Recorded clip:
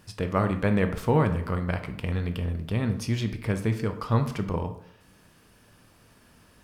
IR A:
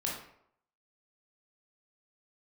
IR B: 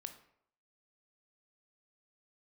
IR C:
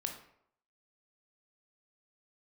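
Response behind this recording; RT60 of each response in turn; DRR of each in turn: B; 0.70 s, 0.70 s, 0.70 s; -3.5 dB, 7.5 dB, 3.0 dB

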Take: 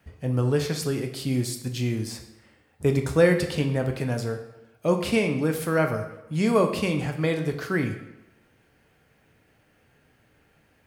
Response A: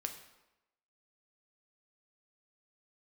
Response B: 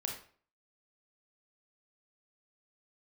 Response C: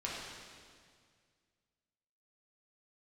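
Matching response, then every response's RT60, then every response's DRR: A; 0.95 s, 0.45 s, 2.0 s; 4.5 dB, 0.5 dB, -6.0 dB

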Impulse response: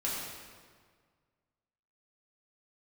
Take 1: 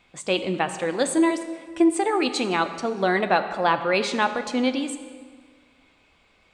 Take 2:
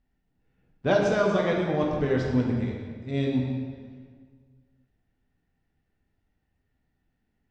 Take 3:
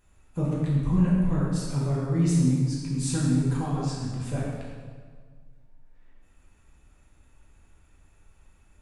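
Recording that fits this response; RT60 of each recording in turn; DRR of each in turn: 3; 1.7 s, 1.7 s, 1.7 s; 8.5 dB, -1.5 dB, -6.5 dB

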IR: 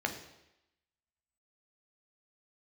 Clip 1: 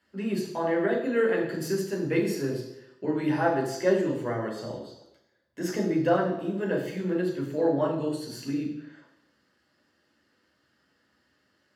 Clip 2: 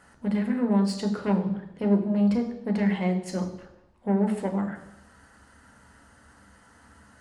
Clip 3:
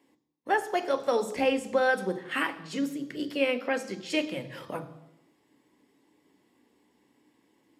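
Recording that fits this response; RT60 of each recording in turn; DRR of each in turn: 2; 0.90 s, 0.90 s, 0.90 s; -2.0 dB, 4.0 dB, 9.0 dB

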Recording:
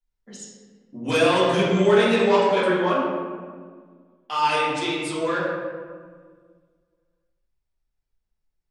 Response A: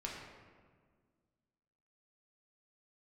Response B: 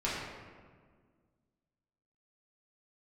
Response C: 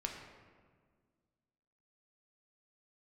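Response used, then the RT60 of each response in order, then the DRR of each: B; 1.7 s, 1.7 s, 1.7 s; -3.5 dB, -8.5 dB, 1.0 dB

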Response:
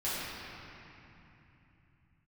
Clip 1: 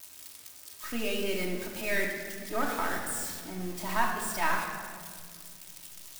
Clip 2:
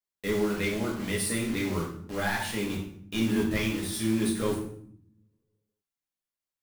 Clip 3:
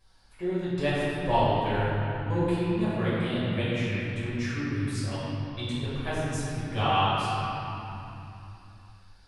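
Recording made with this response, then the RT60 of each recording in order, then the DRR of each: 3; 2.1 s, 0.65 s, 3.0 s; -1.5 dB, -4.5 dB, -12.5 dB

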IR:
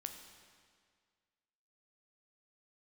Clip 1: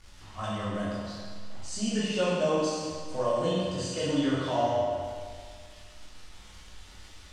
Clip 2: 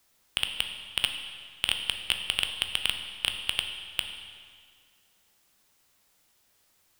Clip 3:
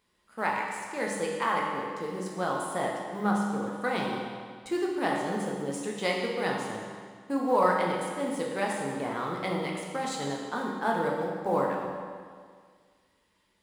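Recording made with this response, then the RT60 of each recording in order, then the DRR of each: 2; 1.9 s, 1.9 s, 1.9 s; -9.0 dB, 5.0 dB, -2.0 dB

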